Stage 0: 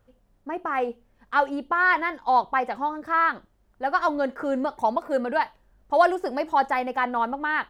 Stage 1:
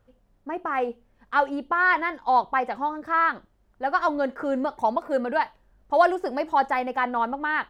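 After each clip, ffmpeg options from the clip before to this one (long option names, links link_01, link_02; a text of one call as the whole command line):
ffmpeg -i in.wav -af "highshelf=frequency=6500:gain=-4.5" out.wav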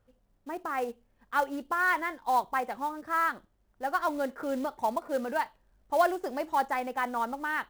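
ffmpeg -i in.wav -af "acrusher=bits=5:mode=log:mix=0:aa=0.000001,volume=-6dB" out.wav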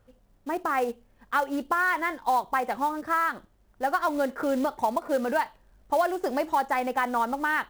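ffmpeg -i in.wav -af "acompressor=threshold=-29dB:ratio=4,volume=7.5dB" out.wav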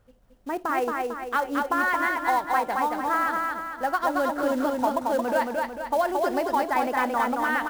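ffmpeg -i in.wav -af "aecho=1:1:224|448|672|896|1120|1344:0.708|0.34|0.163|0.0783|0.0376|0.018" out.wav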